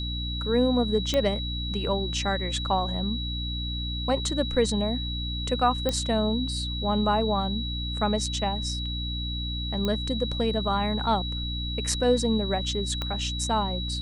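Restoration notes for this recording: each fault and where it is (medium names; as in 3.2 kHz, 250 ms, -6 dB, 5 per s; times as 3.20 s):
hum 60 Hz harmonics 5 -32 dBFS
whine 3.9 kHz -33 dBFS
1.14 s: pop -12 dBFS
5.89 s: pop -12 dBFS
9.85 s: pop -15 dBFS
13.02 s: pop -16 dBFS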